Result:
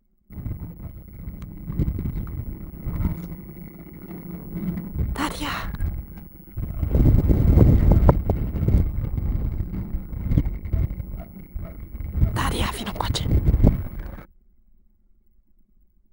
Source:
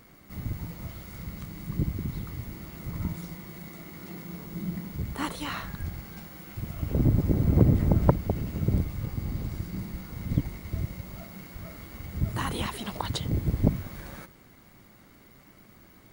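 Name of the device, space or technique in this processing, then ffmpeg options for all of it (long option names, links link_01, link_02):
voice memo with heavy noise removal: -af "anlmdn=0.251,dynaudnorm=framelen=460:gausssize=9:maxgain=4.5dB,asubboost=boost=2:cutoff=80,volume=2.5dB"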